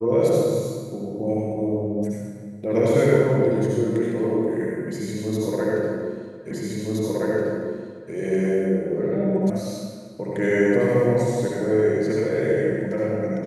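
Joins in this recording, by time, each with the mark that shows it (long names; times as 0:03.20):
0:06.51: the same again, the last 1.62 s
0:09.50: cut off before it has died away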